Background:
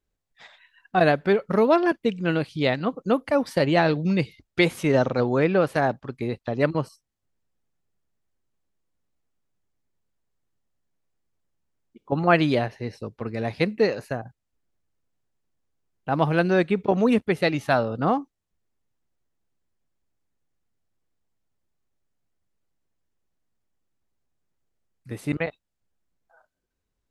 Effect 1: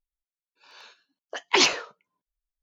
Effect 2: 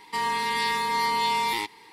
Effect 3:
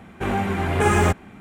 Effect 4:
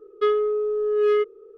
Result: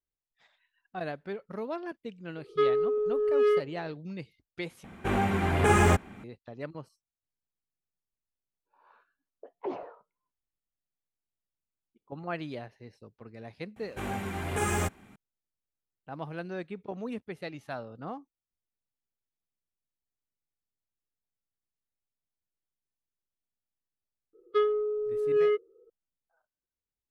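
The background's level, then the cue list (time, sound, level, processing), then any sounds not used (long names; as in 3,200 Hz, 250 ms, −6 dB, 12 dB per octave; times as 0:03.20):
background −17 dB
0:02.36: mix in 4 −4 dB
0:04.84: overwrite with 3 −3.5 dB
0:08.10: mix in 1 −12.5 dB + auto-filter low-pass saw up 0.82 Hz 380–1,900 Hz
0:13.76: mix in 3 −11.5 dB + high-shelf EQ 4,800 Hz +11 dB
0:24.33: mix in 4 −4 dB + spectral dynamics exaggerated over time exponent 1.5
not used: 2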